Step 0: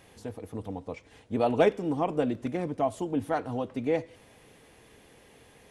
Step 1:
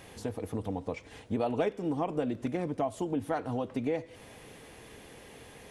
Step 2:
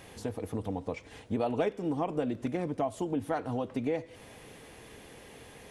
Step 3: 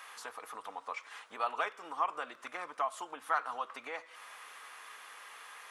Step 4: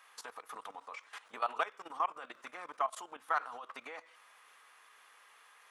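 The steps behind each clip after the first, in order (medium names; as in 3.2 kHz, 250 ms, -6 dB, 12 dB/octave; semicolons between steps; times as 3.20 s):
compression 3:1, threshold -36 dBFS, peak gain reduction 14 dB; trim +5.5 dB
no audible change
resonant high-pass 1.2 kHz, resonance Q 4.4
level held to a coarse grid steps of 16 dB; trim +2.5 dB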